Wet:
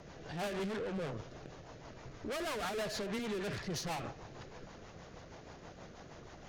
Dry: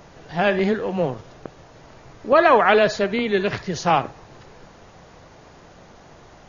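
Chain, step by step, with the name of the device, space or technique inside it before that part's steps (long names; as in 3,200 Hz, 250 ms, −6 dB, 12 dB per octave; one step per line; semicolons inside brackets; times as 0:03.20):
overdriven rotary cabinet (tube saturation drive 33 dB, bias 0.4; rotating-speaker cabinet horn 6.3 Hz)
level −1.5 dB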